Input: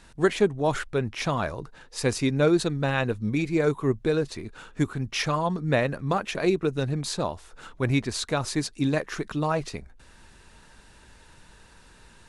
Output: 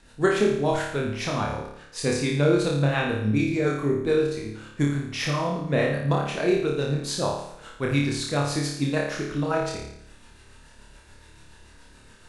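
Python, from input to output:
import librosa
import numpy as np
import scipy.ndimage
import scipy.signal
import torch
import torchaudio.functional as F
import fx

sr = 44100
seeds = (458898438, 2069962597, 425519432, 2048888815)

y = fx.rotary(x, sr, hz=7.0)
y = fx.hum_notches(y, sr, base_hz=60, count=3)
y = fx.room_flutter(y, sr, wall_m=4.8, rt60_s=0.73)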